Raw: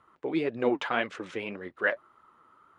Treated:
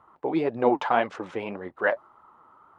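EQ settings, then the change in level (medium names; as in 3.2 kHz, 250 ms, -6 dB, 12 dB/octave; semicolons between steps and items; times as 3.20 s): bass shelf 380 Hz +9.5 dB; peaking EQ 840 Hz +15 dB 1.2 oct; dynamic bell 5.3 kHz, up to +5 dB, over -47 dBFS, Q 1.4; -5.0 dB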